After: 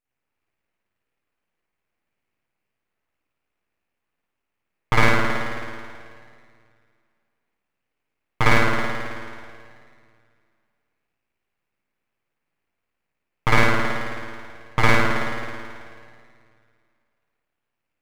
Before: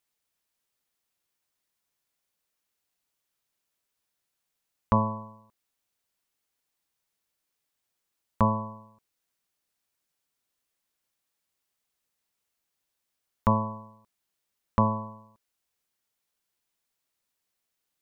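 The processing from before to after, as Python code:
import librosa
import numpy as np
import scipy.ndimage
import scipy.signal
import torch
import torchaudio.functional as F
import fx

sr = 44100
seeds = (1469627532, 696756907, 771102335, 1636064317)

y = fx.high_shelf_res(x, sr, hz=1800.0, db=-11.5, q=3.0)
y = fx.rev_spring(y, sr, rt60_s=2.2, pass_ms=(53,), chirp_ms=55, drr_db=-9.5)
y = np.abs(y)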